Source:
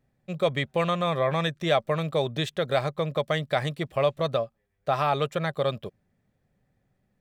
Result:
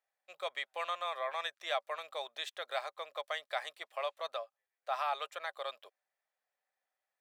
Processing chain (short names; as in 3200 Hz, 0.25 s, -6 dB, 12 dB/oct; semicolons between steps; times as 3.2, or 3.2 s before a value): HPF 690 Hz 24 dB/oct; gain -8 dB